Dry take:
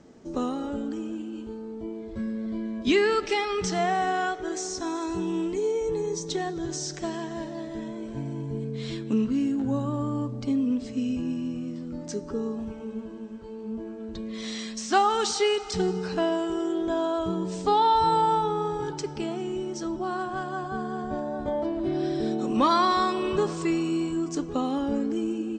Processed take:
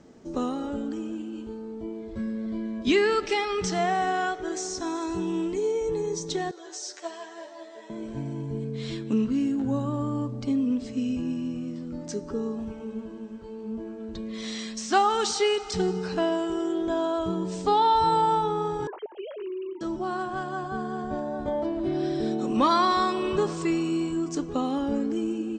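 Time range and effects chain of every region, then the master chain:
6.51–7.9 HPF 450 Hz 24 dB/oct + ensemble effect
18.87–19.81 sine-wave speech + compressor, threshold -31 dBFS
whole clip: dry

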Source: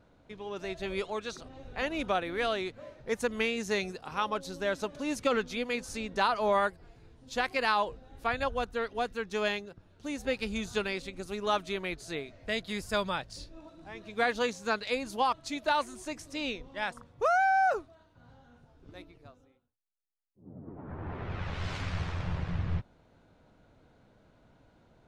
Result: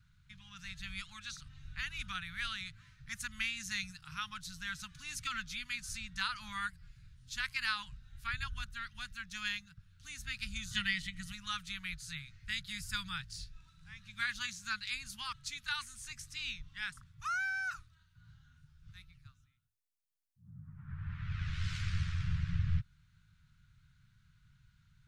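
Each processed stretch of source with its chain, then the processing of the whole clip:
10.71–11.32 bell 220 Hz +5.5 dB 1.5 oct + small resonant body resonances 430/1900/3000 Hz, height 16 dB, ringing for 20 ms
whole clip: elliptic band-stop 150–1400 Hz, stop band 80 dB; bell 1300 Hz -5 dB 2.6 oct; gain +1 dB

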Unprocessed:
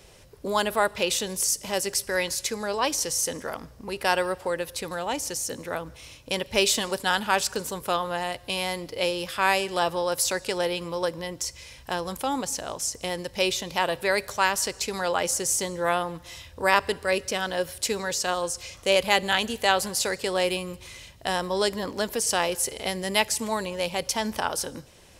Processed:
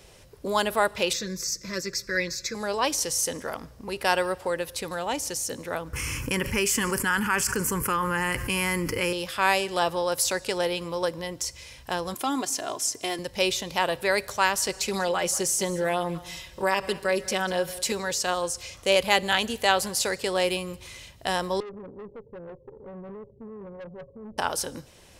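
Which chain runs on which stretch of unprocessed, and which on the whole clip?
1.13–2.55 high shelf 10000 Hz -9 dB + fixed phaser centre 3000 Hz, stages 6 + comb 5.9 ms, depth 60%
5.93–9.13 fixed phaser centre 1600 Hz, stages 4 + fast leveller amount 70%
12.14–13.19 HPF 120 Hz 24 dB/oct + comb 2.9 ms, depth 68%
14.68–17.92 comb 5.4 ms, depth 97% + compressor 2:1, threshold -24 dBFS + echo 0.194 s -18.5 dB
21.6–24.38 rippled Chebyshev low-pass 580 Hz, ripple 9 dB + tube stage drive 37 dB, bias 0.45
whole clip: dry

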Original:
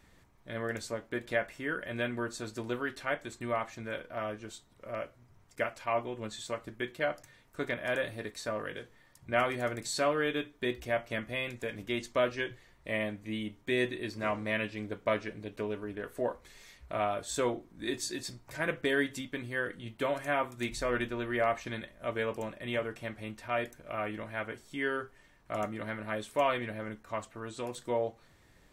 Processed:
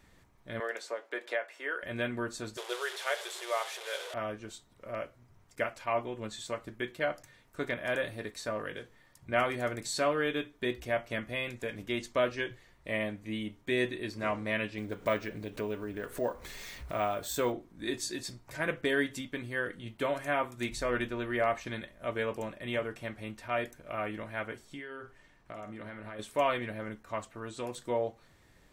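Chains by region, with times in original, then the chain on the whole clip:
0.6–1.83 HPF 430 Hz 24 dB/oct + high shelf 7400 Hz -10 dB + three-band squash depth 70%
2.57–4.14 delta modulation 64 kbps, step -36 dBFS + brick-wall FIR high-pass 360 Hz + bell 3400 Hz +8.5 dB 0.32 oct
14.78–17.52 block floating point 7-bit + upward compressor, threshold -33 dBFS + careless resampling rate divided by 2×, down none, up hold
24.65–26.19 high shelf 11000 Hz -10 dB + compressor 10:1, threshold -39 dBFS + doubler 49 ms -12 dB
whole clip: dry

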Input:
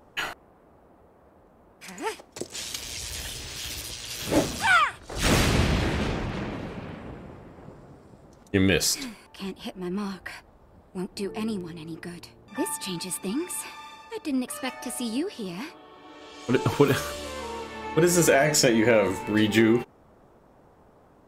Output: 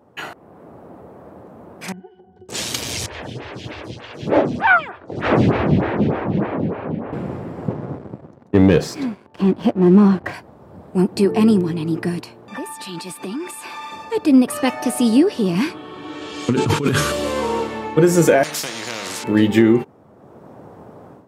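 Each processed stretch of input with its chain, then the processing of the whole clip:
1.92–2.49 compressor 10:1, threshold -43 dBFS + air absorption 120 m + octave resonator F#, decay 0.14 s
3.06–7.13 LPF 2400 Hz + photocell phaser 3.3 Hz
7.68–10.34 LPF 1100 Hz 6 dB/oct + sample leveller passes 2
12.2–13.92 LPF 1800 Hz 6 dB/oct + tilt +3.5 dB/oct + compressor 16:1, threshold -39 dBFS
15.55–17.12 Chebyshev low-pass 12000 Hz, order 8 + bell 650 Hz -9 dB 1.3 oct + negative-ratio compressor -31 dBFS
18.43–19.24 band-pass 5100 Hz, Q 2.8 + spectral compressor 4:1
whole clip: HPF 95 Hz 24 dB/oct; tilt shelf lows +4.5 dB, about 1100 Hz; AGC gain up to 14 dB; gain -1 dB

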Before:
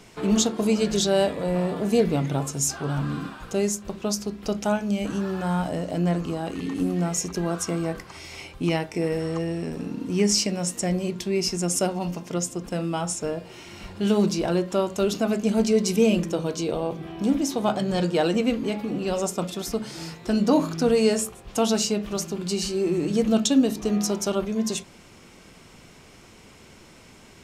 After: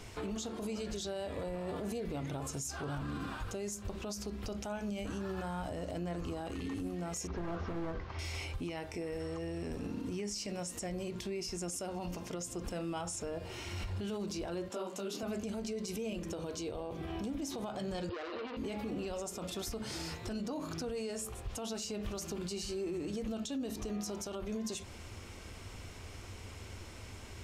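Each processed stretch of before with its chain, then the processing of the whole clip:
7.27–8.19 delta modulation 32 kbps, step -42.5 dBFS + LPF 1300 Hz 6 dB/oct + overloaded stage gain 28 dB
14.68–15.23 steep high-pass 160 Hz + detuned doubles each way 48 cents
18.09–18.57 brick-wall FIR band-pass 240–5100 Hz + flutter echo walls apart 11.6 m, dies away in 0.49 s + core saturation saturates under 2000 Hz
whole clip: resonant low shelf 120 Hz +7 dB, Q 3; compressor 4:1, threshold -30 dBFS; limiter -30 dBFS; gain -1 dB

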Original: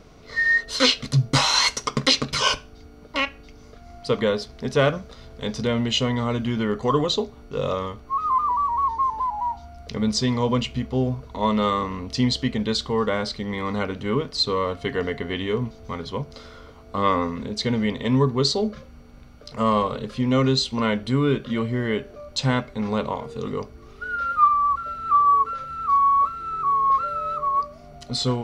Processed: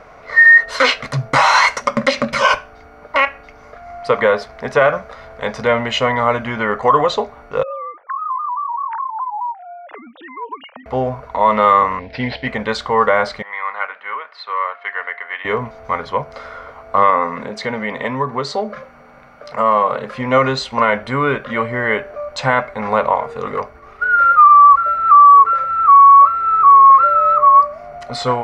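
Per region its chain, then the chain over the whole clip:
1.81–2.45 bell 700 Hz -5.5 dB 2.4 oct + compressor 1.5:1, threshold -24 dBFS + small resonant body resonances 230/560 Hz, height 18 dB, ringing for 90 ms
7.63–10.86 sine-wave speech + compressor 4:1, threshold -38 dBFS
11.99–12.47 CVSD 32 kbps + fixed phaser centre 2900 Hz, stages 4
13.42–15.45 HPF 1300 Hz + air absorption 380 m
17.1–20.18 resonant low shelf 110 Hz -8.5 dB, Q 1.5 + compressor 2:1, threshold -25 dBFS
23.49–24.07 expander -43 dBFS + overloaded stage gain 23 dB
whole clip: band shelf 1100 Hz +16 dB 2.5 oct; maximiser -0.5 dB; gain -1 dB

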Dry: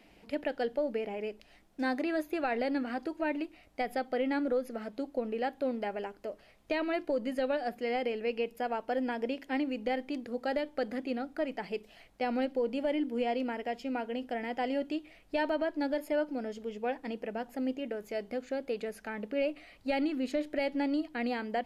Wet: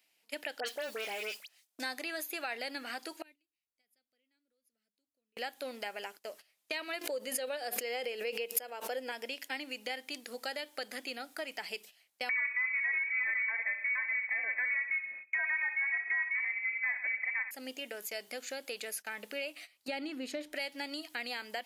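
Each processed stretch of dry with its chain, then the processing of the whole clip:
0.6–1.8 HPF 330 Hz 6 dB/oct + sample leveller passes 2 + dispersion highs, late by 66 ms, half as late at 2700 Hz
3.22–5.37 passive tone stack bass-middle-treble 10-0-1 + compressor 2:1, threshold -56 dBFS
7.01–9.12 bell 490 Hz +9 dB 0.58 oct + backwards sustainer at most 99 dB/s
12.29–17.51 sample leveller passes 2 + inverted band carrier 2500 Hz + feedback echo 63 ms, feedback 57%, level -11 dB
19.88–20.53 tilt -3 dB/oct + mismatched tape noise reduction decoder only
whole clip: gate -47 dBFS, range -19 dB; differentiator; compressor 2.5:1, threshold -55 dBFS; gain +17.5 dB

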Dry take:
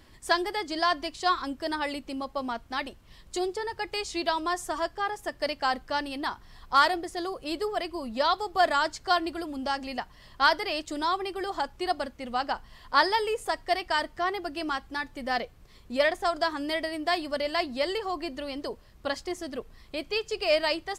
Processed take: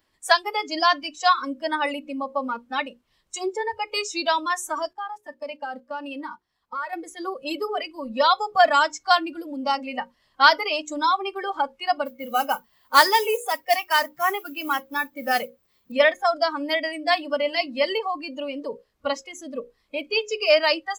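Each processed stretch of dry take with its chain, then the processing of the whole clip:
4.93–6.93 gate -41 dBFS, range -10 dB + compressor 5:1, threshold -33 dBFS + HPF 46 Hz
12.05–15.92 HPF 55 Hz + modulation noise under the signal 15 dB
whole clip: notches 60/120/180/240/300/360/420/480/540 Hz; spectral noise reduction 19 dB; low shelf 180 Hz -11.5 dB; gain +7.5 dB

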